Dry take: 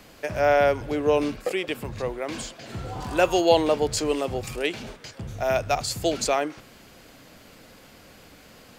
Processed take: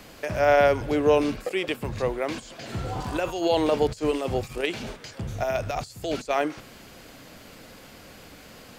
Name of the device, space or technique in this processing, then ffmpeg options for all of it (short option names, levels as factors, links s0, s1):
de-esser from a sidechain: -filter_complex "[0:a]asplit=2[s0][s1];[s1]highpass=f=6700:w=0.5412,highpass=f=6700:w=1.3066,apad=whole_len=387585[s2];[s0][s2]sidechaincompress=threshold=0.00282:ratio=16:attack=3.5:release=33,volume=1.41"